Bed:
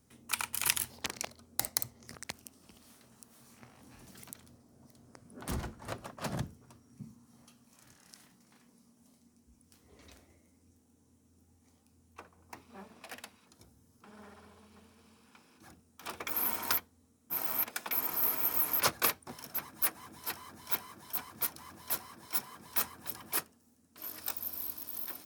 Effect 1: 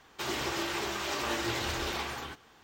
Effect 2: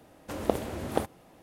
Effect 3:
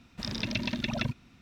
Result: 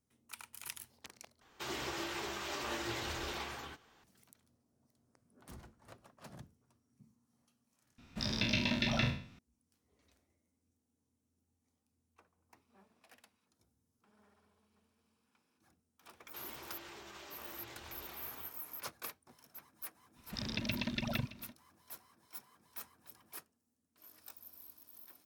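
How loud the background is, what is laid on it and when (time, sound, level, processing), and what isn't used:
bed -16 dB
1.41 replace with 1 -7 dB
7.98 replace with 3 -3.5 dB + spectral trails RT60 0.47 s
16.15 add 1 -14 dB + limiter -28.5 dBFS
20.14 add 3 -5.5 dB, fades 0.05 s + echo 0.619 s -16.5 dB
not used: 2

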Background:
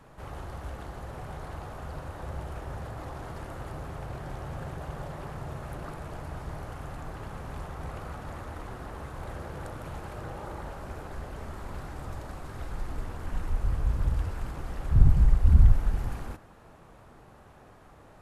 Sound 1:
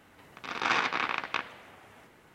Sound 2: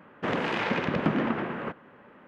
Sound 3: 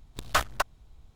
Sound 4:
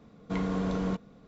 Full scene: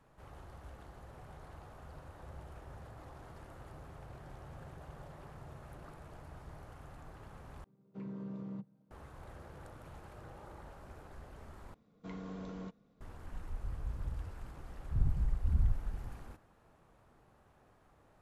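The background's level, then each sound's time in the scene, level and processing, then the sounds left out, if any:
background -12.5 dB
7.64 replace with 4 -11.5 dB + chord vocoder minor triad, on C3
11.74 replace with 4 -14.5 dB
not used: 1, 2, 3

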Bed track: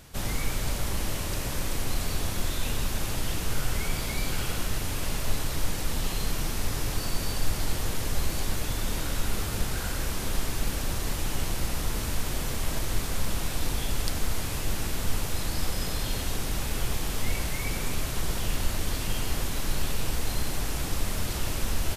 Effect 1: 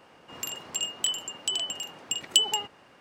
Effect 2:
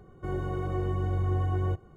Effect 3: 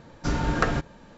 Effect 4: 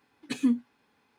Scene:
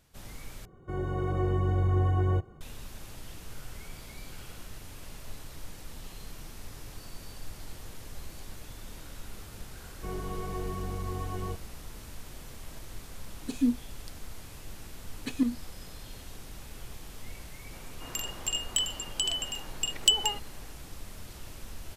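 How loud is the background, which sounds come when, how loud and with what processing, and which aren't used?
bed track -15 dB
0.65 replace with 2 -2 dB + AGC gain up to 4 dB
9.8 add 2 -5 dB + comb 4.5 ms, depth 89%
13.18 add 4 -0.5 dB + photocell phaser 2 Hz
14.96 add 4 -1 dB + tremolo saw up 8.5 Hz, depth 60%
17.72 add 1 -1 dB
not used: 3

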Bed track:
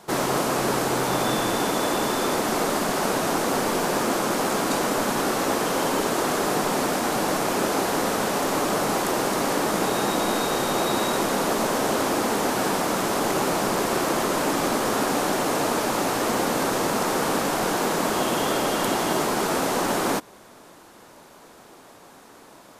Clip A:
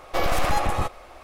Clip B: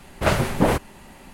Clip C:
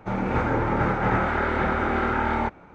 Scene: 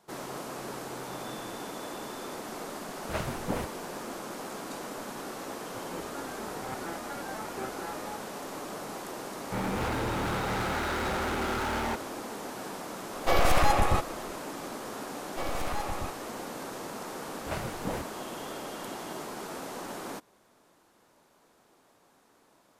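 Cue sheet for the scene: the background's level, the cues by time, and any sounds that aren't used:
bed track -15.5 dB
2.88 add B -14 dB
5.67 add C -4.5 dB + stepped resonator 8.4 Hz 130–790 Hz
9.46 add C -17 dB + sample leveller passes 5
13.13 add A -0.5 dB
15.23 add A -11.5 dB
17.25 add B -16 dB

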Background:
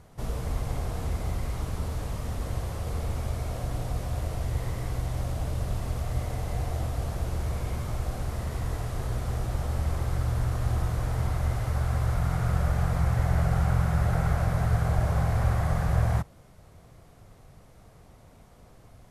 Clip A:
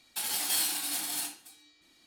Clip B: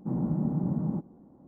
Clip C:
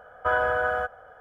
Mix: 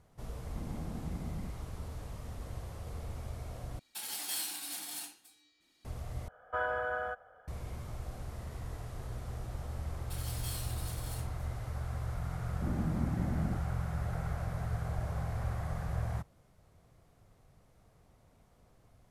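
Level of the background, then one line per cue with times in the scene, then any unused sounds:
background -11 dB
0.5 add B -14.5 dB
3.79 replace with A -8 dB
6.28 replace with C -10 dB
9.94 add A -14.5 dB
12.56 add B -7 dB

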